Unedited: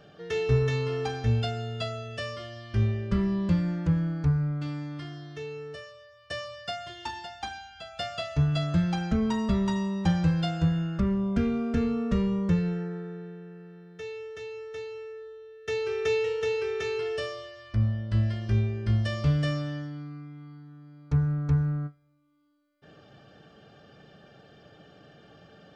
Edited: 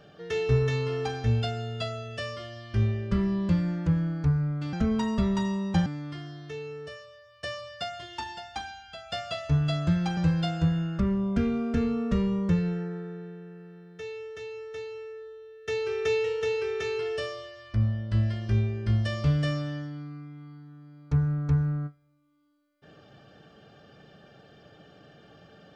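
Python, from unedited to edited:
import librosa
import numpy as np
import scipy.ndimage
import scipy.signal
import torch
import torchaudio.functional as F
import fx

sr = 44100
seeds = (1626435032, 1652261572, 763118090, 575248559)

y = fx.edit(x, sr, fx.move(start_s=9.04, length_s=1.13, to_s=4.73), tone=tone)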